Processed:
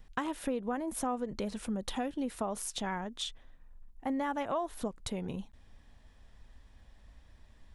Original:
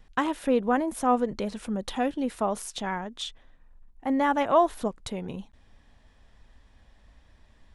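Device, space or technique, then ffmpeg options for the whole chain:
ASMR close-microphone chain: -af "lowshelf=f=170:g=4,acompressor=threshold=0.0447:ratio=6,highshelf=f=7600:g=6,volume=0.668"

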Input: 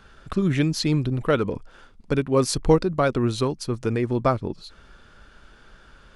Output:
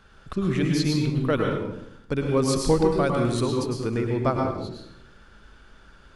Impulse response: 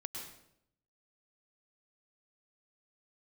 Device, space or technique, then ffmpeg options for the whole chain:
bathroom: -filter_complex "[1:a]atrim=start_sample=2205[s0];[0:a][s0]afir=irnorm=-1:irlink=0,asettb=1/sr,asplit=3[s1][s2][s3];[s1]atrim=end=2.914[s4];[s2]atrim=start=2.91:end=3.46,asetpts=PTS-STARTPTS,afade=t=in:d=0.004:c=qsin,afade=t=out:st=0.546:d=0.004:c=qsin,equalizer=f=9100:w=1.8:g=8.5[s5];[s3]atrim=start=3.456[s6];[s4][s5]acrossfade=d=0.004:c1=hsin:c2=qsin[s7];[s7][s6]acrossfade=d=0.004:c1=qsin:c2=hsin"

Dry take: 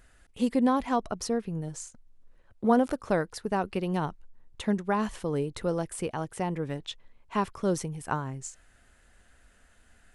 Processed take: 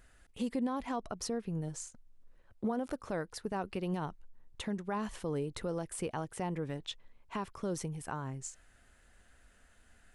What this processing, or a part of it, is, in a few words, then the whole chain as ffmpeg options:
stacked limiters: -af "alimiter=limit=0.141:level=0:latency=1:release=401,alimiter=limit=0.0708:level=0:latency=1:release=125,volume=0.708"

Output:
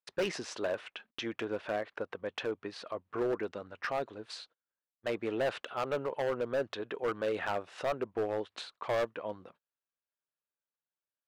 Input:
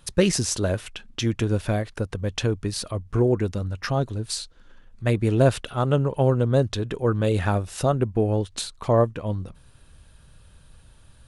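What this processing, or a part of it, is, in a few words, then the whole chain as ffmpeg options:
walkie-talkie: -filter_complex "[0:a]asettb=1/sr,asplit=3[s0][s1][s2];[s0]atrim=end=1.434[s3];[s1]atrim=start=1.43:end=3.33,asetpts=PTS-STARTPTS,afade=t=in:d=0.004:c=qsin,afade=t=out:st=1.896:d=0.004:c=qsin,highshelf=f=6000:g=-6[s4];[s2]atrim=start=3.326[s5];[s3][s4]acrossfade=d=0.004:c1=hsin:c2=qsin[s6];[s6][s5]acrossfade=d=0.004:c1=qsin:c2=hsin,highpass=490,lowpass=2600,asoftclip=type=hard:threshold=0.0668,agate=range=0.0178:threshold=0.00224:ratio=16:detection=peak,volume=0.708"

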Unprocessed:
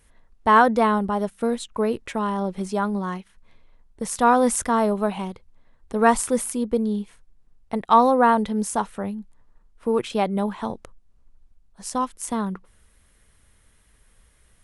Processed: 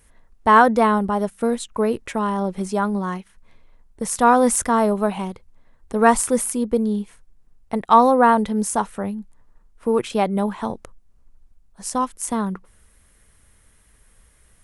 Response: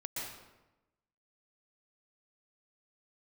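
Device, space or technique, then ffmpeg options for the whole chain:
exciter from parts: -filter_complex "[0:a]asplit=2[s0][s1];[s1]highpass=2700,asoftclip=type=tanh:threshold=0.1,highpass=3500,volume=0.398[s2];[s0][s2]amix=inputs=2:normalize=0,volume=1.33"

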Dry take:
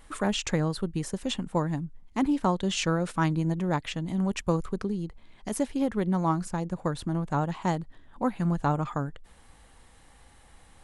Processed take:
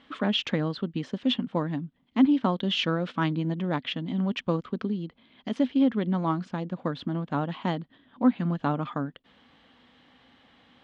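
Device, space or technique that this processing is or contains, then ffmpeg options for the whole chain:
kitchen radio: -af "highpass=160,equalizer=f=250:t=q:w=4:g=10,equalizer=f=380:t=q:w=4:g=-3,equalizer=f=860:t=q:w=4:g=-4,equalizer=f=3200:t=q:w=4:g=8,lowpass=f=4200:w=0.5412,lowpass=f=4200:w=1.3066"

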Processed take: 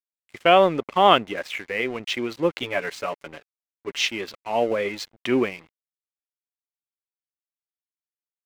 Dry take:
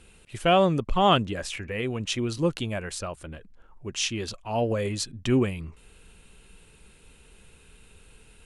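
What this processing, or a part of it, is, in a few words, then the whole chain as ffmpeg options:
pocket radio on a weak battery: -filter_complex "[0:a]asettb=1/sr,asplit=3[s0][s1][s2];[s0]atrim=end=2.624[s3];[s1]atrim=start=2.62:end=4.07,asetpts=PTS-STARTPTS,afade=t=in:d=0.004:c=qsin,afade=t=out:st=1.446:d=0.004:c=qsin,aecho=1:1:7:0.94,atrim=end_sample=63945[s4];[s2]atrim=start=4.066[s5];[s3][s4]acrossfade=d=0.004:c1=hsin:c2=qsin[s6];[s6][s5]acrossfade=d=0.004:c1=qsin:c2=hsin,highpass=320,lowpass=3600,aeval=exprs='sgn(val(0))*max(abs(val(0))-0.00422,0)':c=same,equalizer=f=2100:t=o:w=0.2:g=8,volume=1.88"

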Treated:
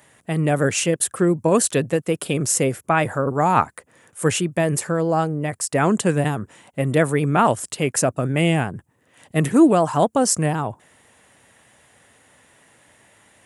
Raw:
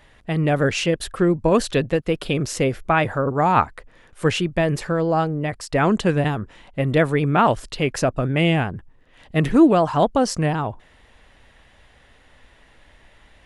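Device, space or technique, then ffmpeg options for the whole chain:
budget condenser microphone: -af "highpass=f=100:w=0.5412,highpass=f=100:w=1.3066,highshelf=f=6000:t=q:w=1.5:g=11.5"

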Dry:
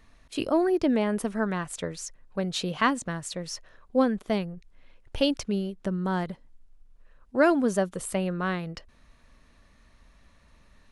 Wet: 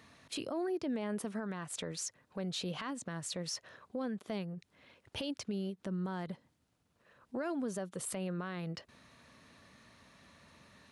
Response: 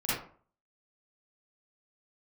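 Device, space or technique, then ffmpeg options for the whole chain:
broadcast voice chain: -af "highpass=f=95:w=0.5412,highpass=f=95:w=1.3066,deesser=0.5,acompressor=threshold=0.0141:ratio=4,equalizer=f=4000:t=o:w=0.77:g=2,alimiter=level_in=2.51:limit=0.0631:level=0:latency=1:release=22,volume=0.398,volume=1.33"

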